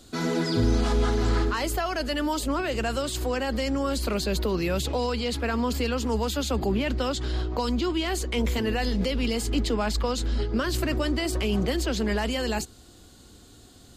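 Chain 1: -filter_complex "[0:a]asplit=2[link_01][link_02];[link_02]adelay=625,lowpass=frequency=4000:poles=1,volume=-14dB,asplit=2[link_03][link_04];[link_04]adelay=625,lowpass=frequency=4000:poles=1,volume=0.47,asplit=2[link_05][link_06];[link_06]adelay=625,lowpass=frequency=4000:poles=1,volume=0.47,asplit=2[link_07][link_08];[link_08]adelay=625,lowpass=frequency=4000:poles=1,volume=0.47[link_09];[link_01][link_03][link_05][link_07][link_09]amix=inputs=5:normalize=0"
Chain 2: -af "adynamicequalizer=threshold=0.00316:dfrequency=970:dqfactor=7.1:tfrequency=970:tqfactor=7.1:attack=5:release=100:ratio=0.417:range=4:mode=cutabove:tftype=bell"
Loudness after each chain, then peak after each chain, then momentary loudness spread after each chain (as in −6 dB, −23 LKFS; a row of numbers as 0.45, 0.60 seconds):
−26.5, −27.0 LKFS; −12.0, −12.0 dBFS; 4, 4 LU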